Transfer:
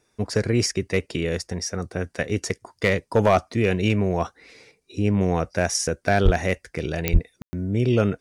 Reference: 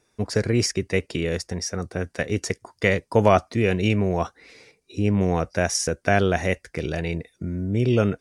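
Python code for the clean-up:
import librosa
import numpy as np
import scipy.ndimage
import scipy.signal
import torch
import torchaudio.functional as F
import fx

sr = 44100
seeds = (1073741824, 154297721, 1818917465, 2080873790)

y = fx.fix_declip(x, sr, threshold_db=-9.0)
y = fx.fix_declick_ar(y, sr, threshold=10.0)
y = fx.fix_deplosive(y, sr, at_s=(6.24, 7.12))
y = fx.fix_ambience(y, sr, seeds[0], print_start_s=4.4, print_end_s=4.9, start_s=7.42, end_s=7.53)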